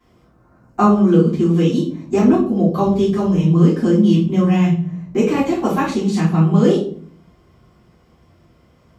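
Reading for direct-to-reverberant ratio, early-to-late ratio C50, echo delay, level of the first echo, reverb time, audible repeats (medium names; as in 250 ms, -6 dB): -10.5 dB, 5.5 dB, no echo, no echo, 0.50 s, no echo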